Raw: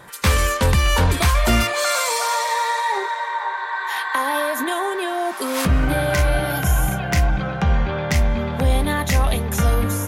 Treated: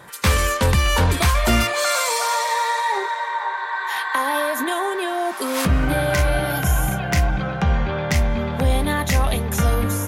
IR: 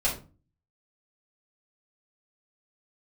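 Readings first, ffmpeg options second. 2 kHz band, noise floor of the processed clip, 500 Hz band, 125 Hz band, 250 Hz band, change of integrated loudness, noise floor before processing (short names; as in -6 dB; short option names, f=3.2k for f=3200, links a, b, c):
0.0 dB, -28 dBFS, 0.0 dB, -0.5 dB, 0.0 dB, -0.5 dB, -28 dBFS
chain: -af "highpass=44"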